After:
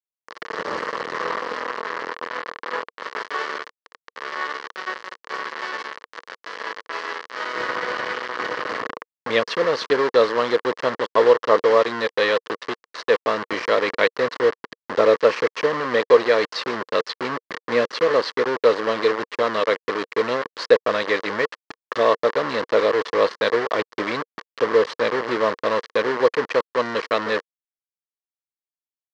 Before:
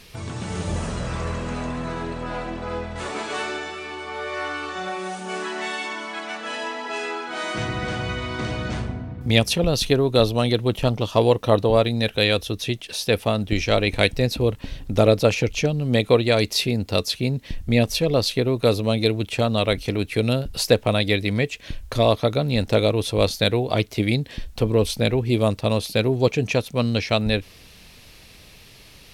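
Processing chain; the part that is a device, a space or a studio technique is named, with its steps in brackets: hand-held game console (bit crusher 4-bit; cabinet simulation 440–4200 Hz, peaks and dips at 470 Hz +7 dB, 730 Hz -7 dB, 1.1 kHz +8 dB, 1.8 kHz +6 dB, 2.5 kHz -8 dB, 3.6 kHz -8 dB); trim +1 dB

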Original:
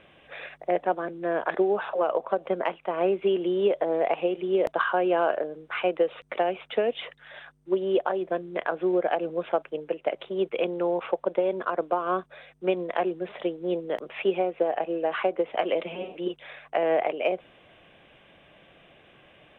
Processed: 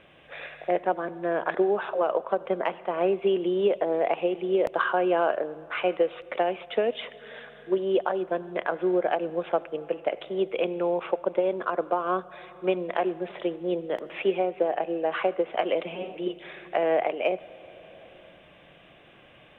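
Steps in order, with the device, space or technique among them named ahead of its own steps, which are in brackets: compressed reverb return (on a send at -4 dB: reverberation RT60 1.9 s, pre-delay 66 ms + compression 6:1, threshold -40 dBFS, peak gain reduction 19 dB)

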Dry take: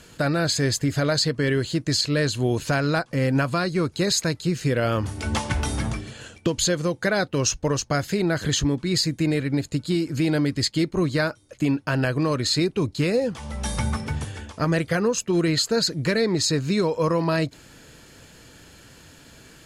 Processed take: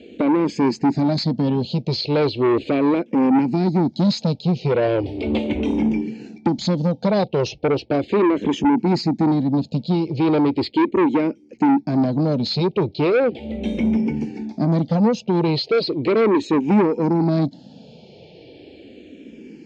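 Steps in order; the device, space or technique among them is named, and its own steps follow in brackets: FFT filter 110 Hz 0 dB, 200 Hz +13 dB, 370 Hz +15 dB, 770 Hz +5 dB, 1.1 kHz -23 dB, 2.9 kHz +1 dB, 5.1 kHz +4 dB, 10 kHz +2 dB; barber-pole phaser into a guitar amplifier (barber-pole phaser -0.37 Hz; saturation -14 dBFS, distortion -10 dB; cabinet simulation 79–4300 Hz, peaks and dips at 220 Hz +4 dB, 880 Hz +7 dB, 2.3 kHz +9 dB)

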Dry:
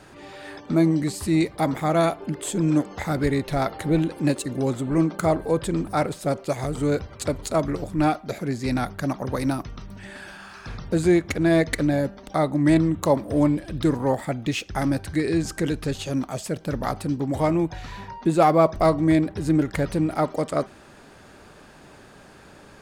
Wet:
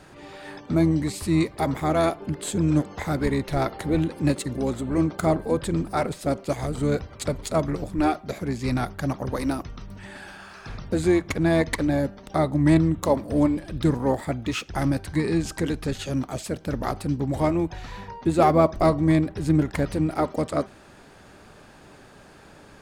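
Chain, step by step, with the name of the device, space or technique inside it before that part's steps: octave pedal (harmony voices -12 st -8 dB); trim -1.5 dB

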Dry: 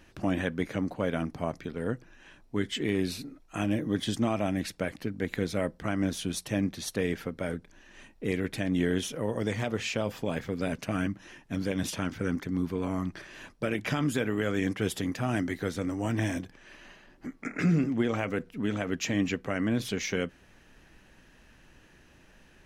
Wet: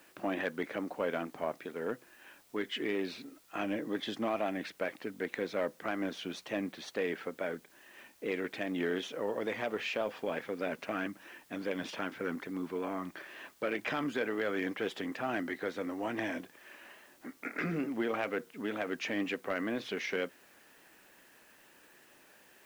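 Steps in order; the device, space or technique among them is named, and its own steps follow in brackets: tape answering machine (band-pass 370–3000 Hz; saturation -22 dBFS, distortion -22 dB; wow and flutter; white noise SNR 28 dB)

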